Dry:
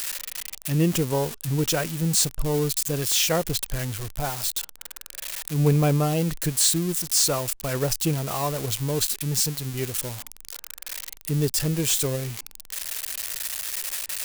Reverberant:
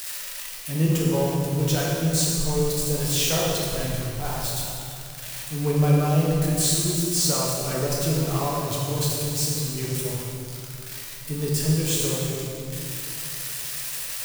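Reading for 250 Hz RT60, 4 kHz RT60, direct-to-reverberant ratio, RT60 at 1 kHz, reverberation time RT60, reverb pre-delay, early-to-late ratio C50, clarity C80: 3.4 s, 2.0 s, -5.0 dB, 2.5 s, 2.7 s, 4 ms, -1.5 dB, 0.5 dB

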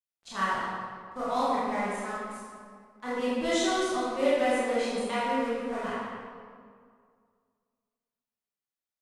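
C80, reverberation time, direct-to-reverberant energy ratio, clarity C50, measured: -1.5 dB, 2.1 s, -11.0 dB, -4.0 dB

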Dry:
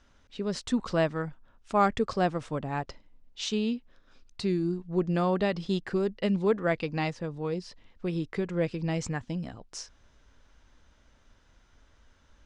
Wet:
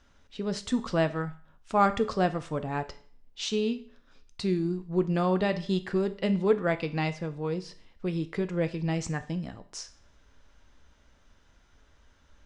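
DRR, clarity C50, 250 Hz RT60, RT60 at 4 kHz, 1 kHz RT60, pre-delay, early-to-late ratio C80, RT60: 9.5 dB, 15.5 dB, 0.50 s, 0.50 s, 0.50 s, 5 ms, 20.0 dB, 0.50 s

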